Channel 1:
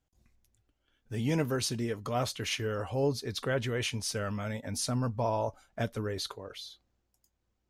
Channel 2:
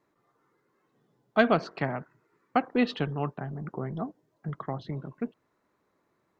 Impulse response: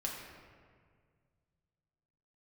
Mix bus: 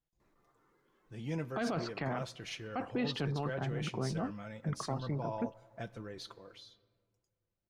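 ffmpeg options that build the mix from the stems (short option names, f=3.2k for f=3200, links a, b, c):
-filter_complex "[0:a]aecho=1:1:5.9:0.5,adynamicsmooth=sensitivity=2:basefreq=7.7k,volume=-11.5dB,asplit=2[a][b];[b]volume=-15.5dB[c];[1:a]adelay=200,volume=-1dB[d];[2:a]atrim=start_sample=2205[e];[c][e]afir=irnorm=-1:irlink=0[f];[a][d][f]amix=inputs=3:normalize=0,alimiter=level_in=1.5dB:limit=-24dB:level=0:latency=1:release=12,volume=-1.5dB"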